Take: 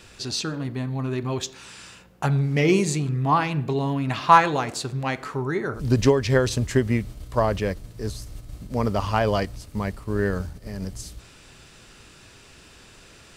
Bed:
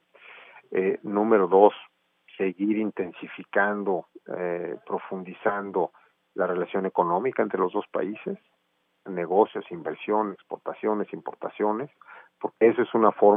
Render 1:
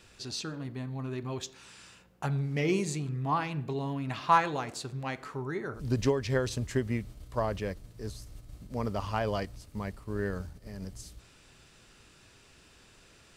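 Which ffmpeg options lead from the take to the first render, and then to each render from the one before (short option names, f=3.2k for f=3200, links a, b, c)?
-af "volume=-9dB"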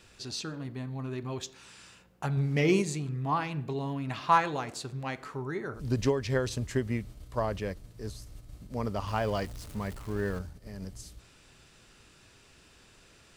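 -filter_complex "[0:a]asettb=1/sr,asplit=3[a][b][c];[a]atrim=end=9.074[d];[b]atrim=start=9.07:end=10.39,asetpts=PTS-STARTPTS,afade=t=in:d=0.004:c=qsin,afade=t=out:st=1.316:d=0.004:c=qsin,aeval=exprs='val(0)+0.5*0.00794*sgn(val(0))':c=same[e];[c]atrim=start=10.386[f];[d][e]acrossfade=d=0.004:c1=hsin:c2=qsin[g];[g][f]acrossfade=d=0.004:c1=qsin:c2=hsin,asplit=3[h][i][j];[h]atrim=end=2.372[k];[i]atrim=start=2.368:end=2.822,asetpts=PTS-STARTPTS,volume=3.5dB[l];[j]atrim=start=2.818[m];[k][l]acrossfade=d=0.004:c1=hsin:c2=hsin[n];[n][m]acrossfade=d=0.004:c1=hsin:c2=hsin"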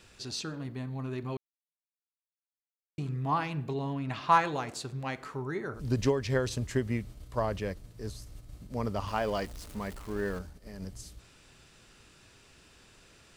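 -filter_complex "[0:a]asettb=1/sr,asplit=3[a][b][c];[a]atrim=end=3.744[d];[b]atrim=start=3.74:end=4.3,asetpts=PTS-STARTPTS,afade=t=in:d=0.004:c=qsin,afade=t=out:st=0.556:d=0.004:c=qsin,highshelf=f=8.8k:g=-9.5[e];[c]atrim=start=4.296[f];[d][e]acrossfade=d=0.004:c1=hsin:c2=qsin[g];[g][f]acrossfade=d=0.004:c1=qsin:c2=hsin,asettb=1/sr,asplit=3[h][i][j];[h]atrim=end=9.084[k];[i]atrim=start=9.08:end=10.8,asetpts=PTS-STARTPTS,afade=t=in:d=0.004:c=qsin,afade=t=out:st=1.716:d=0.004:c=qsin,equalizer=f=110:w=1.8:g=-9[l];[j]atrim=start=10.796[m];[k][l]acrossfade=d=0.004:c1=hsin:c2=qsin[n];[n][m]acrossfade=d=0.004:c1=qsin:c2=hsin,asplit=3[o][p][q];[o]atrim=end=1.37,asetpts=PTS-STARTPTS,afade=t=out:st=1.366:d=0.004:c=hsin[r];[p]atrim=start=1.37:end=2.98,asetpts=PTS-STARTPTS,volume=0[s];[q]atrim=start=2.98,asetpts=PTS-STARTPTS,afade=t=in:d=0.004:c=hsin[t];[r][s][t]concat=n=3:v=0:a=1"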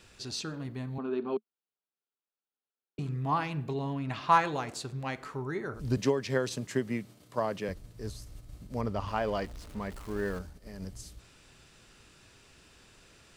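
-filter_complex "[0:a]asettb=1/sr,asplit=3[a][b][c];[a]atrim=end=0.984[d];[b]atrim=start=0.98:end=2.99,asetpts=PTS-STARTPTS,afade=t=in:d=0.004:c=qsin,afade=t=out:st=2.006:d=0.004:c=qsin,highpass=f=220:w=0.5412,highpass=f=220:w=1.3066,equalizer=f=220:t=q:w=4:g=9,equalizer=f=410:t=q:w=4:g=9,equalizer=f=790:t=q:w=4:g=4,equalizer=f=1.4k:t=q:w=4:g=6,equalizer=f=2k:t=q:w=4:g=-10,lowpass=f=4k:w=0.5412,lowpass=f=4k:w=1.3066[e];[c]atrim=start=2.986[f];[d][e]acrossfade=d=0.004:c1=hsin:c2=qsin[g];[g][f]acrossfade=d=0.004:c1=qsin:c2=hsin,asettb=1/sr,asplit=3[h][i][j];[h]atrim=end=5.974[k];[i]atrim=start=5.97:end=7.69,asetpts=PTS-STARTPTS,afade=t=in:d=0.004:c=qsin,afade=t=out:st=1.716:d=0.004:c=qsin,highpass=f=140:w=0.5412,highpass=f=140:w=1.3066[l];[j]atrim=start=7.686[m];[k][l]acrossfade=d=0.004:c1=hsin:c2=qsin[n];[n][m]acrossfade=d=0.004:c1=qsin:c2=hsin,asettb=1/sr,asplit=3[o][p][q];[o]atrim=end=8.814[r];[p]atrim=start=8.81:end=9.93,asetpts=PTS-STARTPTS,afade=t=in:d=0.004:c=qsin,afade=t=out:st=1.116:d=0.004:c=qsin,highshelf=f=5.6k:g=-9.5[s];[q]atrim=start=9.926[t];[r][s]acrossfade=d=0.004:c1=hsin:c2=qsin[u];[u][t]acrossfade=d=0.004:c1=qsin:c2=hsin"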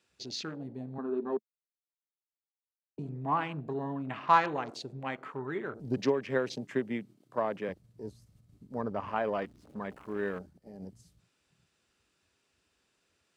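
-af "afwtdn=0.00631,highpass=180"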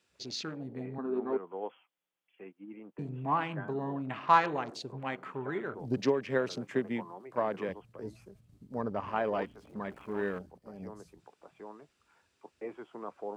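-filter_complex "[1:a]volume=-22.5dB[a];[0:a][a]amix=inputs=2:normalize=0"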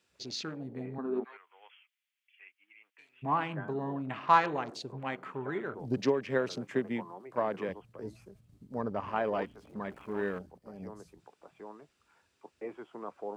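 -filter_complex "[0:a]asplit=3[a][b][c];[a]afade=t=out:st=1.23:d=0.02[d];[b]highpass=f=2.2k:t=q:w=2.3,afade=t=in:st=1.23:d=0.02,afade=t=out:st=3.22:d=0.02[e];[c]afade=t=in:st=3.22:d=0.02[f];[d][e][f]amix=inputs=3:normalize=0"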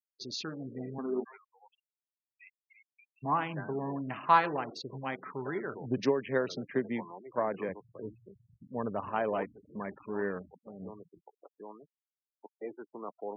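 -af "afftfilt=real='re*gte(hypot(re,im),0.00631)':imag='im*gte(hypot(re,im),0.00631)':win_size=1024:overlap=0.75,highpass=80"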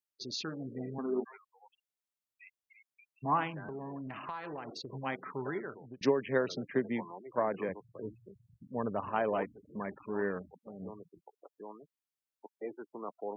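-filter_complex "[0:a]asplit=3[a][b][c];[a]afade=t=out:st=3.49:d=0.02[d];[b]acompressor=threshold=-38dB:ratio=6:attack=3.2:release=140:knee=1:detection=peak,afade=t=in:st=3.49:d=0.02,afade=t=out:st=4.88:d=0.02[e];[c]afade=t=in:st=4.88:d=0.02[f];[d][e][f]amix=inputs=3:normalize=0,asplit=2[g][h];[g]atrim=end=6.01,asetpts=PTS-STARTPTS,afade=t=out:st=5.45:d=0.56[i];[h]atrim=start=6.01,asetpts=PTS-STARTPTS,afade=t=in:d=0.004:c=hsin[j];[i][j]concat=n=2:v=0:a=1"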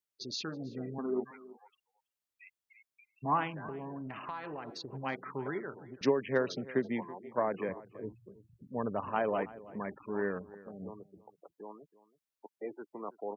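-filter_complex "[0:a]asplit=2[a][b];[b]adelay=326.5,volume=-19dB,highshelf=f=4k:g=-7.35[c];[a][c]amix=inputs=2:normalize=0"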